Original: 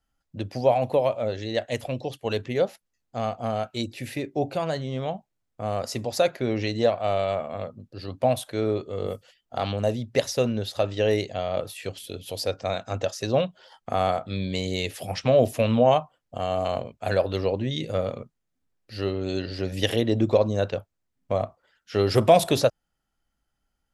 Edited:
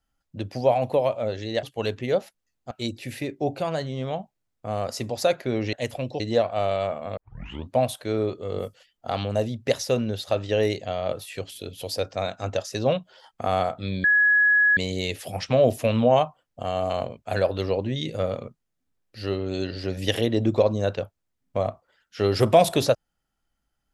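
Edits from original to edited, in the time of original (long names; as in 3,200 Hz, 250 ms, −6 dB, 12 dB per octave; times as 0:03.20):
0:01.63–0:02.10: move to 0:06.68
0:03.18–0:03.66: remove
0:07.65: tape start 0.53 s
0:14.52: insert tone 1,680 Hz −15 dBFS 0.73 s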